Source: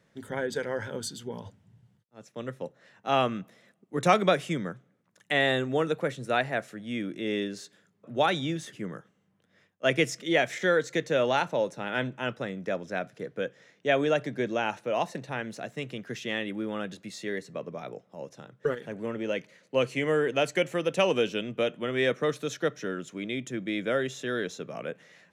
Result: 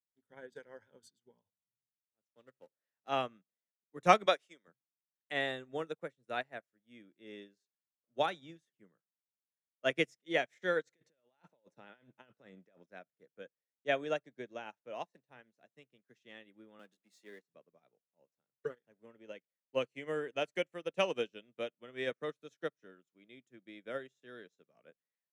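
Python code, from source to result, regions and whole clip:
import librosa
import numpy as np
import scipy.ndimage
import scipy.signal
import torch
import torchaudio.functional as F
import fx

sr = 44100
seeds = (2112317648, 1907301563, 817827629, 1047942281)

y = fx.chain(x, sr, fx.law_mismatch(coded='mu'),
    fx.highpass(hz=62.0, slope=12),
    fx.peak_eq(hz=160.0, db=-6.0, octaves=0.97), at=(2.3, 3.09))
y = fx.chain(y, sr, fx.highpass(hz=390.0, slope=12),
    fx.peak_eq(hz=5300.0, db=5.0, octaves=1.4), at=(4.26, 4.68))
y = fx.chain(y, sr, fx.high_shelf(hz=7900.0, db=-5.0),
    fx.over_compress(threshold_db=-36.0, ratio=-1.0), at=(10.87, 12.86))
y = fx.chain(y, sr, fx.law_mismatch(coded='mu'),
    fx.highpass(hz=180.0, slope=24),
    fx.high_shelf(hz=8000.0, db=6.5), at=(16.79, 17.42))
y = fx.low_shelf(y, sr, hz=93.0, db=-12.0)
y = fx.upward_expand(y, sr, threshold_db=-47.0, expansion=2.5)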